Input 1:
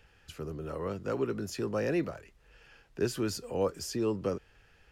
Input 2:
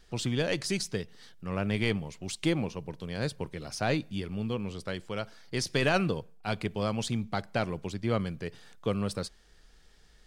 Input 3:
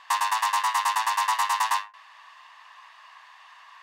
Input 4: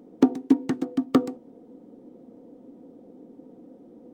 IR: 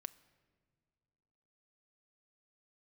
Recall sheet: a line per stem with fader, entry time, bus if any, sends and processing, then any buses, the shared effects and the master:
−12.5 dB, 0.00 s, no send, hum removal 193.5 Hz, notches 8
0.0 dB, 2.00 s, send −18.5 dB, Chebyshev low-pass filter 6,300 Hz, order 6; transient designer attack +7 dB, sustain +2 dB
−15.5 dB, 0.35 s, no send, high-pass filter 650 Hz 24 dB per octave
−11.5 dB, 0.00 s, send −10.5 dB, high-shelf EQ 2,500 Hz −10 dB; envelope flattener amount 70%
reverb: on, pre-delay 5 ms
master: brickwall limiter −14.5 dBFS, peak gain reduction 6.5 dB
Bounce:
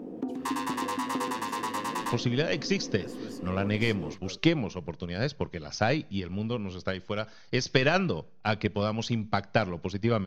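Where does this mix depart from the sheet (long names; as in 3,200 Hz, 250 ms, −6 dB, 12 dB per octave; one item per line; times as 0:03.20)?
stem 3 −15.5 dB → −9.0 dB
stem 4 −11.5 dB → −18.0 dB
master: missing brickwall limiter −14.5 dBFS, peak gain reduction 6.5 dB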